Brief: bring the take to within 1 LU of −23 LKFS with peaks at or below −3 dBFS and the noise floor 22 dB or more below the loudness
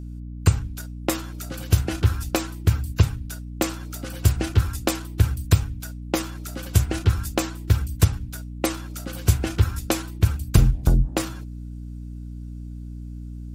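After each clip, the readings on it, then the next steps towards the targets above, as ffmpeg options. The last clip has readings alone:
mains hum 60 Hz; hum harmonics up to 300 Hz; level of the hum −32 dBFS; integrated loudness −24.5 LKFS; sample peak −2.0 dBFS; target loudness −23.0 LKFS
→ -af "bandreject=frequency=60:width_type=h:width=4,bandreject=frequency=120:width_type=h:width=4,bandreject=frequency=180:width_type=h:width=4,bandreject=frequency=240:width_type=h:width=4,bandreject=frequency=300:width_type=h:width=4"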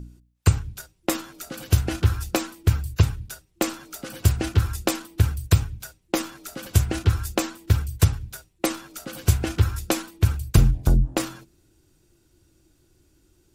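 mains hum none found; integrated loudness −24.5 LKFS; sample peak −2.5 dBFS; target loudness −23.0 LKFS
→ -af "volume=1.5dB,alimiter=limit=-3dB:level=0:latency=1"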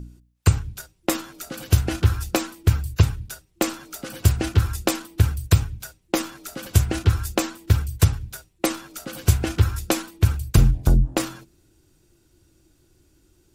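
integrated loudness −23.0 LKFS; sample peak −3.0 dBFS; background noise floor −62 dBFS

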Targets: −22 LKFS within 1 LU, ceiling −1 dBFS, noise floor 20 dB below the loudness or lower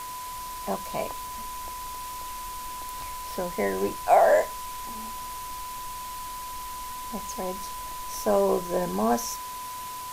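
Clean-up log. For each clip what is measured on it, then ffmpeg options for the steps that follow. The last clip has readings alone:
interfering tone 1,000 Hz; level of the tone −35 dBFS; background noise floor −37 dBFS; target noise floor −49 dBFS; integrated loudness −29.0 LKFS; sample peak −7.0 dBFS; target loudness −22.0 LKFS
→ -af "bandreject=frequency=1000:width=30"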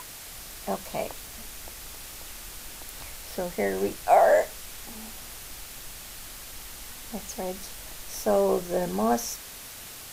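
interfering tone none found; background noise floor −43 dBFS; target noise floor −50 dBFS
→ -af "afftdn=noise_reduction=7:noise_floor=-43"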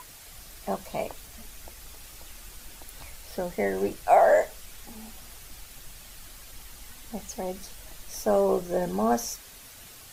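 background noise floor −48 dBFS; integrated loudness −26.5 LKFS; sample peak −7.5 dBFS; target loudness −22.0 LKFS
→ -af "volume=4.5dB"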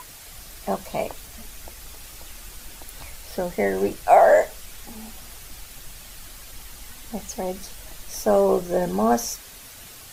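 integrated loudness −22.0 LKFS; sample peak −3.0 dBFS; background noise floor −43 dBFS

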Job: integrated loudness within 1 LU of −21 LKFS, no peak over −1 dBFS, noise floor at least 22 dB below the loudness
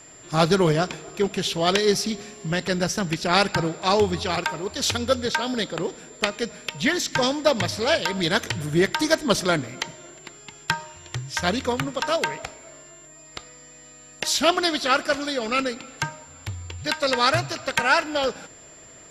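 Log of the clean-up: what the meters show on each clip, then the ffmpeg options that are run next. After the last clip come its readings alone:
interfering tone 7,300 Hz; level of the tone −46 dBFS; integrated loudness −23.5 LKFS; sample peak −2.5 dBFS; target loudness −21.0 LKFS
→ -af "bandreject=frequency=7300:width=30"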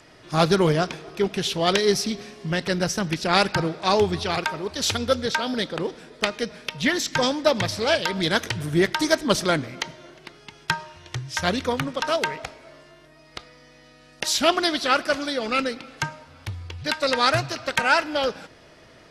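interfering tone none found; integrated loudness −23.5 LKFS; sample peak −2.5 dBFS; target loudness −21.0 LKFS
→ -af "volume=2.5dB,alimiter=limit=-1dB:level=0:latency=1"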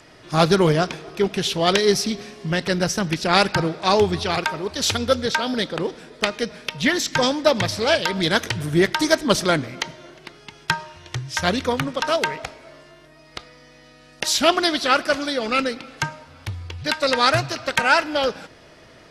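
integrated loudness −21.0 LKFS; sample peak −1.0 dBFS; background noise floor −49 dBFS

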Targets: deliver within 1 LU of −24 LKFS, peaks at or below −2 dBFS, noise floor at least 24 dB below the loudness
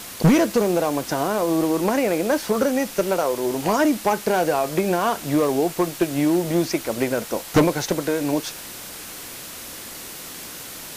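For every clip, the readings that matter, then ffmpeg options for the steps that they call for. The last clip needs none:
background noise floor −37 dBFS; target noise floor −46 dBFS; integrated loudness −21.5 LKFS; sample peak −9.5 dBFS; target loudness −24.0 LKFS
→ -af "afftdn=noise_reduction=9:noise_floor=-37"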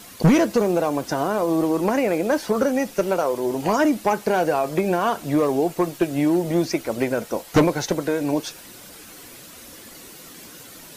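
background noise floor −43 dBFS; target noise floor −46 dBFS
→ -af "afftdn=noise_reduction=6:noise_floor=-43"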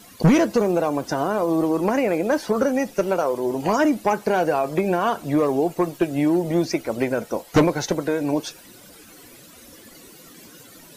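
background noise floor −47 dBFS; integrated loudness −21.5 LKFS; sample peak −9.5 dBFS; target loudness −24.0 LKFS
→ -af "volume=-2.5dB"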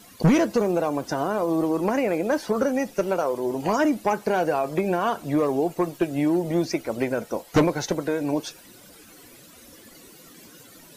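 integrated loudness −24.0 LKFS; sample peak −12.0 dBFS; background noise floor −49 dBFS

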